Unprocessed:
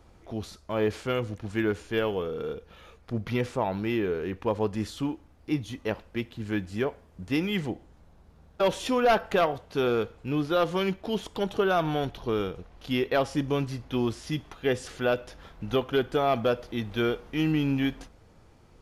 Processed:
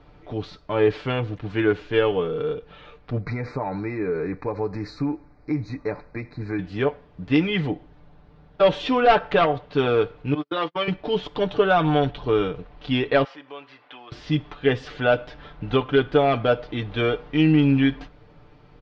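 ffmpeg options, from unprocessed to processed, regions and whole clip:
ffmpeg -i in.wav -filter_complex "[0:a]asettb=1/sr,asplit=3[link_01][link_02][link_03];[link_01]atrim=end=3.204[link_04];[link_02]atrim=start=3.2:end=6.59,asetpts=PTS-STARTPTS,afade=type=in:duration=0.004:curve=qsin,afade=type=out:start_time=3.386:duration=0.004:curve=qsin,acompressor=threshold=-28dB:ratio=4:attack=3.2:release=140:knee=1:detection=peak,asuperstop=centerf=3100:order=12:qfactor=2.2[link_05];[link_03]atrim=start=6.586[link_06];[link_04][link_05]acrossfade=duration=0.004:curve1=hsin:curve2=qsin[link_07];[link_07][link_06]acrossfade=duration=0.004:curve1=qsin:curve2=hsin,asettb=1/sr,asplit=3[link_08][link_09][link_10];[link_08]atrim=end=10.344[link_11];[link_09]atrim=start=10.34:end=10.88,asetpts=PTS-STARTPTS,afade=type=in:duration=0.004:curve=qsin,afade=type=out:start_time=0.536:duration=0.004:curve=qsin,highpass=370,equalizer=frequency=490:width_type=q:width=4:gain=-4,equalizer=frequency=740:width_type=q:width=4:gain=-5,equalizer=frequency=1600:width_type=q:width=4:gain=-4,equalizer=frequency=2700:width_type=q:width=4:gain=-4,equalizer=frequency=3900:width_type=q:width=4:gain=-4,lowpass=frequency=5300:width=0.5412,lowpass=frequency=5300:width=1.3066,asplit=2[link_12][link_13];[link_13]adelay=12,volume=-6.5dB[link_14];[link_12][link_14]amix=inputs=2:normalize=0,atrim=end_sample=23814,agate=range=-46dB:threshold=-34dB:ratio=16:release=100:detection=peak[link_15];[link_10]atrim=start=10.876[link_16];[link_11][link_15]acrossfade=duration=0.004:curve1=hsin:curve2=qsin[link_17];[link_17][link_16]acrossfade=duration=0.004:curve1=qsin:curve2=hsin,asettb=1/sr,asplit=3[link_18][link_19][link_20];[link_18]atrim=end=13.244[link_21];[link_19]atrim=start=13.24:end=14.12,asetpts=PTS-STARTPTS,afade=type=in:duration=0.004:curve=qsin,afade=type=out:start_time=0.876:duration=0.004:curve=qsin,acompressor=threshold=-38dB:ratio=2:attack=3.2:release=140:knee=1:detection=peak,highpass=740,lowpass=2200,aemphasis=mode=production:type=75fm[link_22];[link_20]atrim=start=14.116[link_23];[link_21][link_22]acrossfade=duration=0.004:curve1=hsin:curve2=qsin[link_24];[link_24][link_23]acrossfade=duration=0.004:curve1=qsin:curve2=hsin,lowpass=frequency=4100:width=0.5412,lowpass=frequency=4100:width=1.3066,aecho=1:1:6.8:0.63,volume=4.5dB" out.wav

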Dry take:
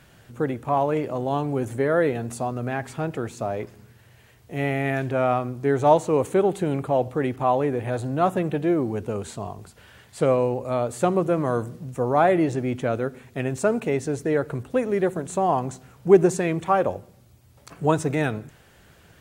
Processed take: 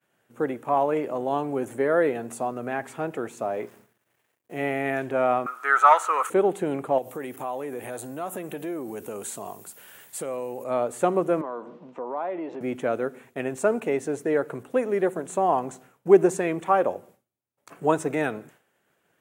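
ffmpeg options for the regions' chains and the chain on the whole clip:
ffmpeg -i in.wav -filter_complex "[0:a]asettb=1/sr,asplit=3[link_01][link_02][link_03];[link_01]atrim=end=3.534[link_04];[link_02]atrim=start=3.53:end=4.61,asetpts=PTS-STARTPTS,afade=type=in:duration=0.004:curve=qsin,afade=type=out:start_time=1.076:duration=0.004:curve=qsin,aeval=exprs='val(0)*gte(abs(val(0)),0.00266)':channel_layout=same,asplit=2[link_05][link_06];[link_06]adelay=34,volume=-13dB[link_07];[link_05][link_07]amix=inputs=2:normalize=0,atrim=end_sample=47628[link_08];[link_03]atrim=start=4.606[link_09];[link_04][link_08]acrossfade=duration=0.004:curve1=hsin:curve2=qsin[link_10];[link_10][link_09]acrossfade=duration=0.004:curve1=qsin:curve2=hsin,asettb=1/sr,asplit=3[link_11][link_12][link_13];[link_11]atrim=end=5.464[link_14];[link_12]atrim=start=5.46:end=6.3,asetpts=PTS-STARTPTS,afade=type=in:duration=0.004:curve=qsin,afade=type=out:start_time=0.836:duration=0.004:curve=qsin,acontrast=25,highpass=frequency=1300:width_type=q:width=14[link_15];[link_13]atrim=start=6.296[link_16];[link_14][link_15]acrossfade=duration=0.004:curve1=hsin:curve2=qsin[link_17];[link_17][link_16]acrossfade=duration=0.004:curve1=qsin:curve2=hsin,asettb=1/sr,asplit=3[link_18][link_19][link_20];[link_18]atrim=end=6.984[link_21];[link_19]atrim=start=6.98:end=10.64,asetpts=PTS-STARTPTS,afade=type=in:duration=0.004:curve=qsin,afade=type=out:start_time=3.656:duration=0.004:curve=qsin,aemphasis=mode=production:type=75fm,acompressor=threshold=-28dB:ratio=4:attack=3.2:release=140:knee=1:detection=peak[link_22];[link_20]atrim=start=10.636[link_23];[link_21][link_22]acrossfade=duration=0.004:curve1=hsin:curve2=qsin[link_24];[link_24][link_23]acrossfade=duration=0.004:curve1=qsin:curve2=hsin,asettb=1/sr,asplit=3[link_25][link_26][link_27];[link_25]atrim=end=11.414[link_28];[link_26]atrim=start=11.41:end=12.61,asetpts=PTS-STARTPTS,afade=type=in:duration=0.004:curve=qsin,afade=type=out:start_time=1.196:duration=0.004:curve=qsin,highpass=frequency=190:width=0.5412,highpass=frequency=190:width=1.3066,equalizer=frequency=580:width_type=q:width=4:gain=3,equalizer=frequency=970:width_type=q:width=4:gain=9,equalizer=frequency=1700:width_type=q:width=4:gain=-4,lowpass=frequency=4400:width=0.5412,lowpass=frequency=4400:width=1.3066,acompressor=threshold=-33dB:ratio=2.5:attack=3.2:release=140:knee=1:detection=peak[link_29];[link_27]atrim=start=12.606[link_30];[link_28][link_29]acrossfade=duration=0.004:curve1=hsin:curve2=qsin[link_31];[link_31][link_30]acrossfade=duration=0.004:curve1=qsin:curve2=hsin,highpass=260,agate=range=-33dB:threshold=-46dB:ratio=3:detection=peak,equalizer=frequency=4600:width_type=o:width=0.95:gain=-8.5" out.wav

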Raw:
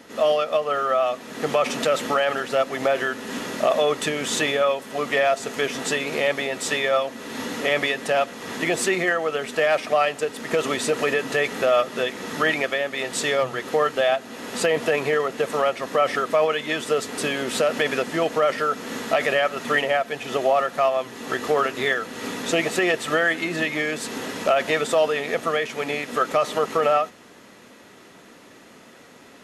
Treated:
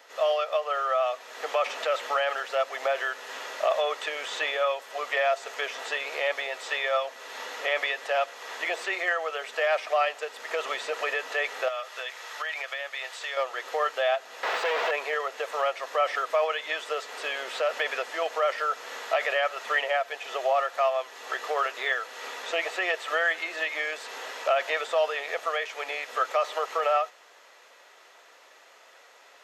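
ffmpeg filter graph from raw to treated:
ffmpeg -i in.wav -filter_complex "[0:a]asettb=1/sr,asplit=3[link_01][link_02][link_03];[link_01]atrim=end=11.684[link_04];[link_02]atrim=start=11.68:end=13.37,asetpts=PTS-STARTPTS,afade=type=in:duration=0.004:curve=qsin,afade=type=out:start_time=1.686:duration=0.004:curve=qsin,equalizer=frequency=250:width=0.53:gain=-12,acompressor=threshold=-24dB:ratio=6:attack=3.2:release=140:knee=1:detection=peak[link_05];[link_03]atrim=start=13.366[link_06];[link_04][link_05]acrossfade=duration=0.004:curve1=hsin:curve2=qsin[link_07];[link_07][link_06]acrossfade=duration=0.004:curve1=qsin:curve2=hsin,asettb=1/sr,asplit=3[link_08][link_09][link_10];[link_08]atrim=end=14.434[link_11];[link_09]atrim=start=14.43:end=14.91,asetpts=PTS-STARTPTS,afade=type=in:duration=0.004:curve=qsin,afade=type=out:start_time=0.476:duration=0.004:curve=qsin,asplit=2[link_12][link_13];[link_13]highpass=frequency=720:poles=1,volume=35dB,asoftclip=type=tanh:threshold=-8.5dB[link_14];[link_12][link_14]amix=inputs=2:normalize=0,lowpass=frequency=1200:poles=1,volume=-6dB,aeval=exprs='clip(val(0),-1,0.0668)':channel_layout=same[link_15];[link_10]atrim=start=14.906[link_16];[link_11][link_15]acrossfade=duration=0.004:curve1=hsin:curve2=qsin[link_17];[link_17][link_16]acrossfade=duration=0.004:curve1=qsin:curve2=hsin,acrossover=split=3900[link_18][link_19];[link_19]acompressor=threshold=-40dB:ratio=4:attack=1:release=60[link_20];[link_18][link_20]amix=inputs=2:normalize=0,highpass=frequency=550:width=0.5412,highpass=frequency=550:width=1.3066,equalizer=frequency=10000:width=2.9:gain=-11.5,volume=-3.5dB" out.wav

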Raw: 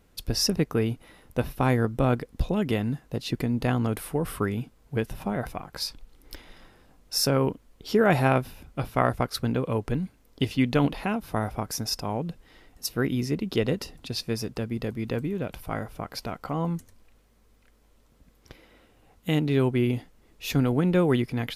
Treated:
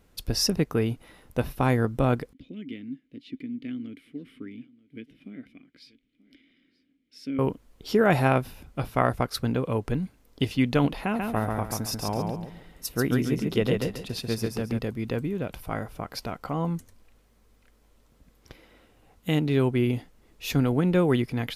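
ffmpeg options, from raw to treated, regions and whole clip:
ffmpeg -i in.wav -filter_complex "[0:a]asettb=1/sr,asplit=3[link_01][link_02][link_03];[link_01]atrim=end=2.334[link_04];[link_02]atrim=start=2.33:end=7.39,asetpts=PTS-STARTPTS,afade=type=in:duration=0.004:curve=qsin,afade=type=out:start_time=5.056:duration=0.004:curve=qsin,asplit=3[link_05][link_06][link_07];[link_05]bandpass=frequency=270:width_type=q:width=8,volume=0dB[link_08];[link_06]bandpass=frequency=2290:width_type=q:width=8,volume=-6dB[link_09];[link_07]bandpass=frequency=3010:width_type=q:width=8,volume=-9dB[link_10];[link_08][link_09][link_10]amix=inputs=3:normalize=0,bandreject=frequency=6100:width=22,aecho=1:1:933:0.0794,atrim=end_sample=223146[link_11];[link_03]atrim=start=7.386[link_12];[link_04][link_11]acrossfade=duration=0.004:curve1=hsin:curve2=qsin[link_13];[link_13][link_12]acrossfade=duration=0.004:curve1=qsin:curve2=hsin,asettb=1/sr,asplit=3[link_14][link_15][link_16];[link_14]atrim=end=11.014[link_17];[link_15]atrim=start=11.01:end=14.79,asetpts=PTS-STARTPTS,afade=type=in:duration=0.004:curve=qsin,afade=type=out:start_time=3.776:duration=0.004:curve=qsin,equalizer=frequency=5100:width_type=o:width=0.68:gain=-5.5,aecho=1:1:139|278|417|556:0.668|0.201|0.0602|0.018,atrim=end_sample=166698[link_18];[link_16]atrim=start=14.786[link_19];[link_17][link_18]acrossfade=duration=0.004:curve1=hsin:curve2=qsin[link_20];[link_20][link_19]acrossfade=duration=0.004:curve1=qsin:curve2=hsin" out.wav

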